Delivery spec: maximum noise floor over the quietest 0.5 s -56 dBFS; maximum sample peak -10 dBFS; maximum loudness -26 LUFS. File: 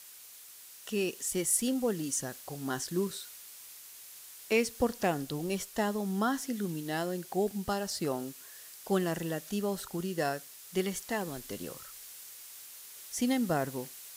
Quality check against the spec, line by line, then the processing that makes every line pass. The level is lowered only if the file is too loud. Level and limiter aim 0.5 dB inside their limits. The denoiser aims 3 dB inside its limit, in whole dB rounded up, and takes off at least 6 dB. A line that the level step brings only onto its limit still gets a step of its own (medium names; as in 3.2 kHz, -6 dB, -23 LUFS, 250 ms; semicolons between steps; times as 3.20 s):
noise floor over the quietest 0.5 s -51 dBFS: fail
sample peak -15.5 dBFS: pass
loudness -33.0 LUFS: pass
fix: noise reduction 8 dB, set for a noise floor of -51 dBFS